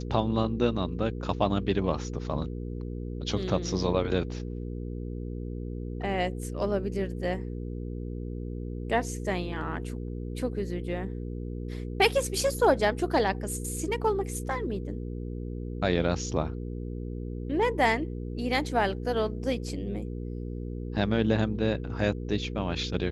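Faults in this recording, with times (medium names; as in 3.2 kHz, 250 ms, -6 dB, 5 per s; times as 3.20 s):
hum 60 Hz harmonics 8 -35 dBFS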